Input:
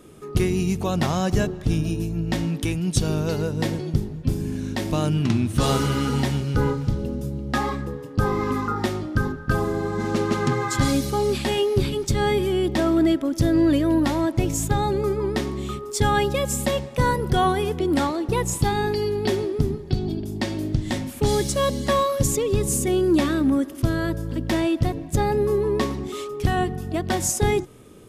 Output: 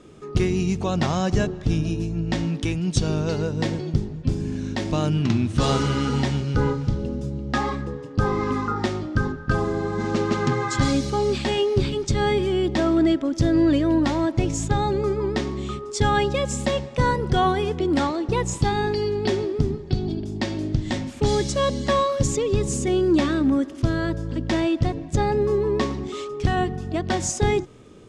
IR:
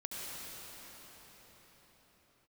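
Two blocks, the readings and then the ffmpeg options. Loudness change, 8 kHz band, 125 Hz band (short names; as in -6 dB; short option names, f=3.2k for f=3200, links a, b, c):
0.0 dB, -3.5 dB, 0.0 dB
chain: -af "lowpass=f=7.4k:w=0.5412,lowpass=f=7.4k:w=1.3066"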